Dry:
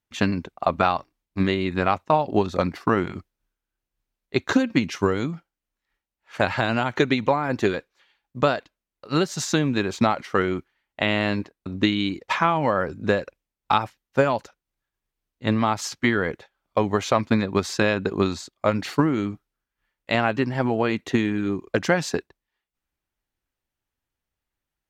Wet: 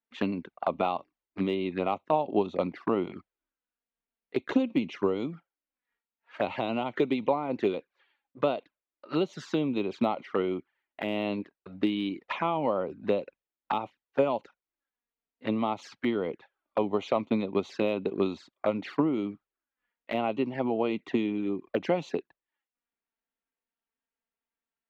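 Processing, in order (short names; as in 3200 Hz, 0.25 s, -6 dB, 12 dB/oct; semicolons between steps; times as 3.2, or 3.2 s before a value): envelope flanger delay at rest 4.4 ms, full sweep at -20.5 dBFS; three-band isolator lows -18 dB, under 190 Hz, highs -24 dB, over 3700 Hz; de-esser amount 100%; gain -3 dB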